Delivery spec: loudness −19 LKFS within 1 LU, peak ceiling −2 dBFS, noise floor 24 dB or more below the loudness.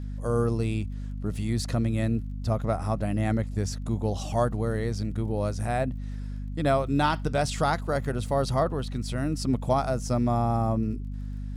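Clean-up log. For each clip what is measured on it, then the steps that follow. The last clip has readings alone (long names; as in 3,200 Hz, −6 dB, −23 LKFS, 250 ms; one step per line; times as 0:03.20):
crackle rate 28 per second; mains hum 50 Hz; hum harmonics up to 250 Hz; level of the hum −31 dBFS; integrated loudness −28.0 LKFS; sample peak −12.0 dBFS; target loudness −19.0 LKFS
→ click removal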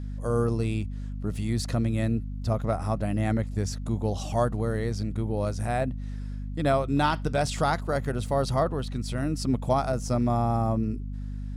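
crackle rate 0.17 per second; mains hum 50 Hz; hum harmonics up to 250 Hz; level of the hum −31 dBFS
→ hum removal 50 Hz, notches 5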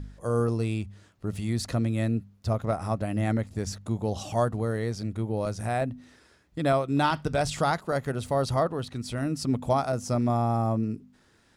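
mains hum none found; integrated loudness −28.5 LKFS; sample peak −12.0 dBFS; target loudness −19.0 LKFS
→ level +9.5 dB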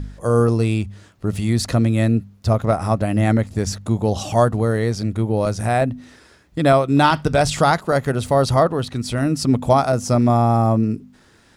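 integrated loudness −19.0 LKFS; sample peak −2.5 dBFS; background noise floor −53 dBFS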